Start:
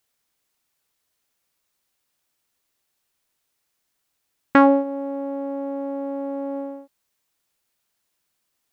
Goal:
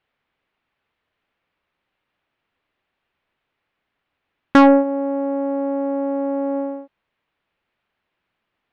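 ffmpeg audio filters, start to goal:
-af "lowpass=f=2.9k:w=0.5412,lowpass=f=2.9k:w=1.3066,acontrast=83,volume=-1dB"

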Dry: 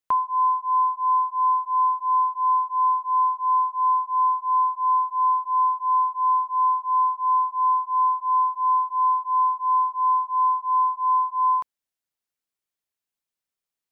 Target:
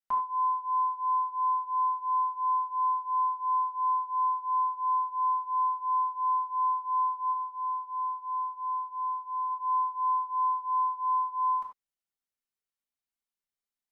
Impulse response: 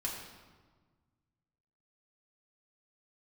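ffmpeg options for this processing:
-filter_complex "[0:a]asplit=3[a][b][c];[a]afade=t=out:st=7.3:d=0.02[d];[b]equalizer=f=830:w=1.5:g=-6.5,afade=t=in:st=7.3:d=0.02,afade=t=out:st=9.49:d=0.02[e];[c]afade=t=in:st=9.49:d=0.02[f];[d][e][f]amix=inputs=3:normalize=0[g];[1:a]atrim=start_sample=2205,afade=t=out:st=0.17:d=0.01,atrim=end_sample=7938,asetrate=52920,aresample=44100[h];[g][h]afir=irnorm=-1:irlink=0,volume=-6.5dB"

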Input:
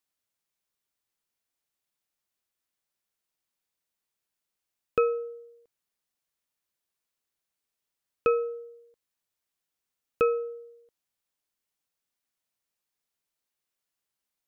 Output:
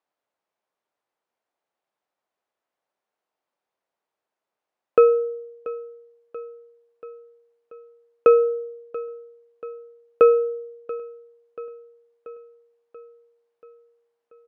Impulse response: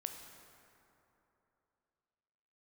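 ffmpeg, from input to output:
-af "acontrast=47,bandpass=f=670:t=q:w=1.2:csg=0,aecho=1:1:684|1368|2052|2736|3420|4104:0.141|0.0848|0.0509|0.0305|0.0183|0.011,volume=7dB"

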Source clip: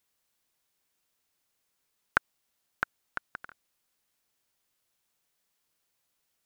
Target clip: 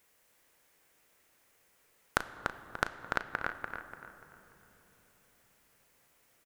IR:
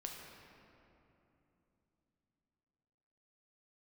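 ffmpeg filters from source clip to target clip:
-filter_complex "[0:a]equalizer=f=500:t=o:w=1:g=6,equalizer=f=2k:t=o:w=1:g=5,equalizer=f=4k:t=o:w=1:g=-5,acompressor=threshold=-37dB:ratio=6,asplit=2[a][b];[b]adelay=36,volume=-13dB[c];[a][c]amix=inputs=2:normalize=0,asplit=2[d][e];[e]adelay=292,lowpass=f=3.1k:p=1,volume=-4dB,asplit=2[f][g];[g]adelay=292,lowpass=f=3.1k:p=1,volume=0.37,asplit=2[h][i];[i]adelay=292,lowpass=f=3.1k:p=1,volume=0.37,asplit=2[j][k];[k]adelay=292,lowpass=f=3.1k:p=1,volume=0.37,asplit=2[l][m];[m]adelay=292,lowpass=f=3.1k:p=1,volume=0.37[n];[d][f][h][j][l][n]amix=inputs=6:normalize=0,asplit=2[o][p];[1:a]atrim=start_sample=2205,asetrate=31752,aresample=44100[q];[p][q]afir=irnorm=-1:irlink=0,volume=-7dB[r];[o][r]amix=inputs=2:normalize=0,volume=6.5dB"

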